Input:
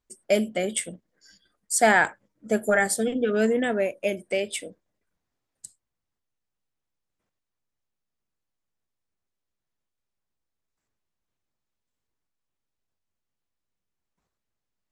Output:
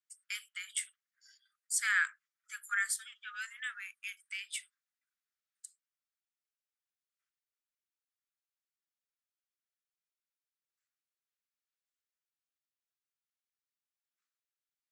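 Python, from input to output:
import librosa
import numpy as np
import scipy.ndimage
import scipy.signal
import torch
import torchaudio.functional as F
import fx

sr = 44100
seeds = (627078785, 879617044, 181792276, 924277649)

y = scipy.signal.sosfilt(scipy.signal.butter(12, 1200.0, 'highpass', fs=sr, output='sos'), x)
y = y * 10.0 ** (-7.5 / 20.0)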